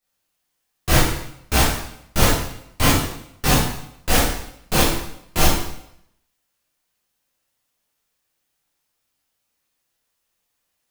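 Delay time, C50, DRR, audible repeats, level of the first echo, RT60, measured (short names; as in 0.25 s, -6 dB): none, 0.0 dB, -10.5 dB, none, none, 0.75 s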